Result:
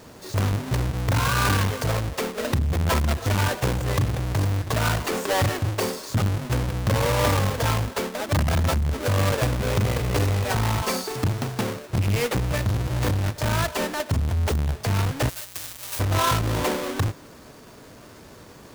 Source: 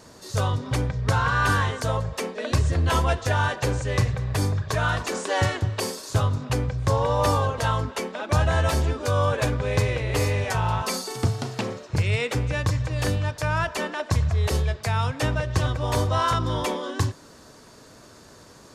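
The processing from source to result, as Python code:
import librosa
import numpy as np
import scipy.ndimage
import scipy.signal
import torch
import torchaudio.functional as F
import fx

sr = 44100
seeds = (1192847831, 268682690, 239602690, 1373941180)

y = fx.halfwave_hold(x, sr)
y = fx.pre_emphasis(y, sr, coefficient=0.97, at=(15.28, 15.99), fade=0.02)
y = fx.transformer_sat(y, sr, knee_hz=250.0)
y = y * librosa.db_to_amplitude(-2.0)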